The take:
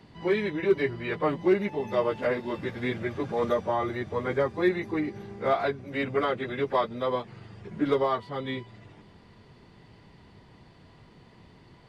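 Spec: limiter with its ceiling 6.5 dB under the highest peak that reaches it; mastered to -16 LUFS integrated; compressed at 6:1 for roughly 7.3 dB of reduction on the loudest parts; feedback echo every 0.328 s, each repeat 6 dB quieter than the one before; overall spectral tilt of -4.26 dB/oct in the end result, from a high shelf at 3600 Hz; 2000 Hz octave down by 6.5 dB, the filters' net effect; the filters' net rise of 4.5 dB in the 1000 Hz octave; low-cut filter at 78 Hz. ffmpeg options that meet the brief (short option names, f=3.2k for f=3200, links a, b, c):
-af "highpass=78,equalizer=f=1k:t=o:g=8.5,equalizer=f=2k:t=o:g=-8.5,highshelf=f=3.6k:g=-9,acompressor=threshold=-24dB:ratio=6,alimiter=limit=-21.5dB:level=0:latency=1,aecho=1:1:328|656|984|1312|1640|1968:0.501|0.251|0.125|0.0626|0.0313|0.0157,volume=15.5dB"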